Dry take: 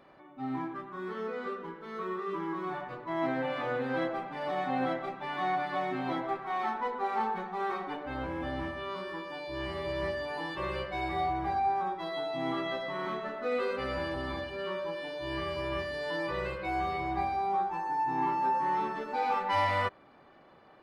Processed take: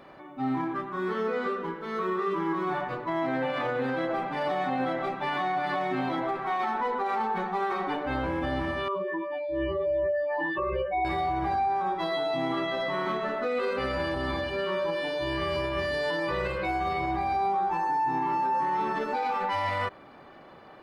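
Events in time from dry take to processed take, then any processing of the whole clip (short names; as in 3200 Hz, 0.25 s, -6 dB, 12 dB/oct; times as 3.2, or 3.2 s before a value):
8.88–11.05 spectral contrast raised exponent 2.5
whole clip: limiter -29 dBFS; gain +8 dB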